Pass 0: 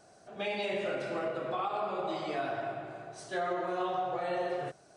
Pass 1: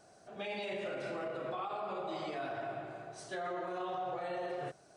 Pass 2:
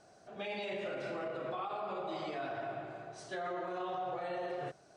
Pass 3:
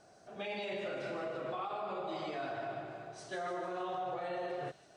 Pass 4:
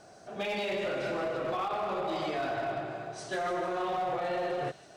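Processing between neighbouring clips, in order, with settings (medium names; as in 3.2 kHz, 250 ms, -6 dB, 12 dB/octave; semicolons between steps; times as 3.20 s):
peak limiter -29 dBFS, peak gain reduction 6 dB; trim -2 dB
low-pass 7.4 kHz 12 dB/octave
feedback echo behind a high-pass 151 ms, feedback 58%, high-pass 4.2 kHz, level -6 dB
one-sided clip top -36.5 dBFS, bottom -33 dBFS; trim +7.5 dB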